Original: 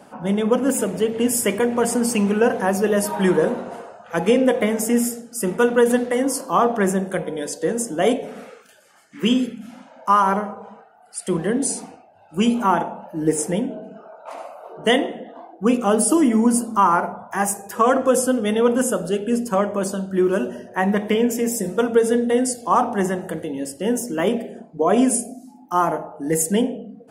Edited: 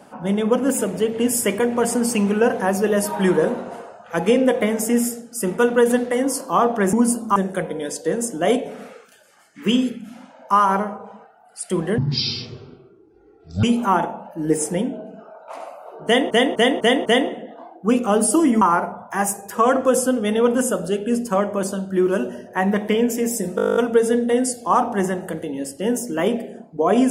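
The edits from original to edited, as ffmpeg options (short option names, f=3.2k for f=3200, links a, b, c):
-filter_complex "[0:a]asplit=20[a][b][c][d][e][f][g][h][i][j][k][l][m][n][o][p][q][r][s][t];[a]atrim=end=6.932[u];[b]atrim=start=16.388:end=16.822[v];[c]atrim=start=6.928:end=11.554[w];[d]atrim=start=11.55:end=12.41,asetpts=PTS-STARTPTS,asetrate=22932,aresample=44100[x];[e]atrim=start=12.406:end=15.082[y];[f]atrim=start=14.828:end=15.082[z];[g]atrim=start=14.828:end=15.082[aa];[h]atrim=start=14.828:end=15.082[ab];[i]atrim=start=14.828:end=16.392[ac];[j]atrim=start=16.818:end=21.792[ad];[k]atrim=start=21.768:end=21.792[ae];[l]atrim=start=21.768:end=21.792[af];[m]atrim=start=21.768:end=21.792[ag];[n]atrim=start=21.768:end=21.792[ah];[o]atrim=start=21.768:end=21.792[ai];[p]atrim=start=21.768:end=21.792[aj];[q]atrim=start=21.768:end=21.792[ak];[r]atrim=start=21.768:end=21.792[al];[s]atrim=start=21.768:end=21.792[am];[t]atrim=start=21.768[an];[u][v]acrossfade=d=0.004:c1=hsin:c2=hsin[ao];[ao][w]acrossfade=d=0.004:c1=hsin:c2=hsin[ap];[ap][x]acrossfade=d=0.004:c1=hsin:c2=hsin[aq];[aq][y]acrossfade=d=0.004:c1=hsin:c2=hsin[ar];[ar][z]acrossfade=d=0.004:c1=hsin:c2=hsin[as];[as][aa]acrossfade=d=0.004:c1=hsin:c2=hsin[at];[at][ab]acrossfade=d=0.004:c1=hsin:c2=hsin[au];[au][ac]acrossfade=d=0.004:c1=hsin:c2=hsin[av];[av][ad]acrossfade=d=0.004:c1=hsin:c2=hsin[aw];[aw][ae]acrossfade=d=0.004:c1=hsin:c2=hsin[ax];[ax][af]acrossfade=d=0.004:c1=hsin:c2=hsin[ay];[ay][ag]acrossfade=d=0.004:c1=hsin:c2=hsin[az];[az][ah]acrossfade=d=0.004:c1=hsin:c2=hsin[ba];[ba][ai]acrossfade=d=0.004:c1=hsin:c2=hsin[bb];[bb][aj]acrossfade=d=0.004:c1=hsin:c2=hsin[bc];[bc][ak]acrossfade=d=0.004:c1=hsin:c2=hsin[bd];[bd][al]acrossfade=d=0.004:c1=hsin:c2=hsin[be];[be][am]acrossfade=d=0.004:c1=hsin:c2=hsin[bf];[bf][an]acrossfade=d=0.004:c1=hsin:c2=hsin"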